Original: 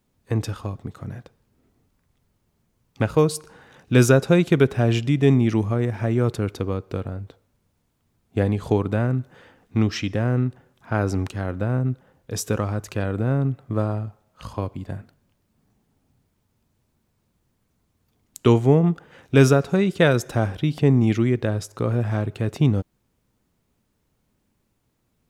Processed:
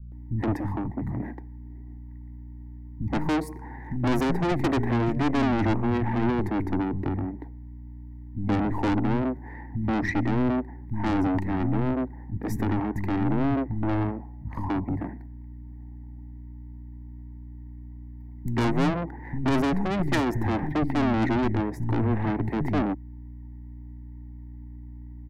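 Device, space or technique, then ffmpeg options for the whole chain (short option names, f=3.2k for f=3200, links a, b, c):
valve amplifier with mains hum: -filter_complex "[0:a]firequalizer=gain_entry='entry(100,0);entry(300,13);entry(510,-11);entry(900,12);entry(1300,-20);entry(1900,10);entry(2900,-30);entry(4300,-21);entry(8300,-22);entry(14000,-8)':delay=0.05:min_phase=1,aeval=exprs='(tanh(15.8*val(0)+0.25)-tanh(0.25))/15.8':c=same,aeval=exprs='val(0)+0.00794*(sin(2*PI*60*n/s)+sin(2*PI*2*60*n/s)/2+sin(2*PI*3*60*n/s)/3+sin(2*PI*4*60*n/s)/4+sin(2*PI*5*60*n/s)/5)':c=same,acrossover=split=200[a][b];[b]adelay=120[c];[a][c]amix=inputs=2:normalize=0,volume=3.5dB"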